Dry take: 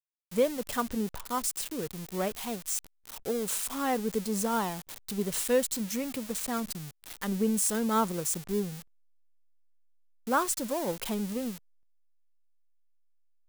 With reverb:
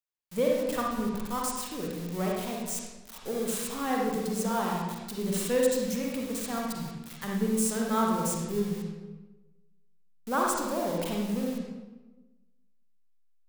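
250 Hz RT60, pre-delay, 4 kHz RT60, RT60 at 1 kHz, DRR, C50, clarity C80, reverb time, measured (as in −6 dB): 1.4 s, 39 ms, 0.80 s, 1.1 s, −2.5 dB, −0.5 dB, 2.5 dB, 1.2 s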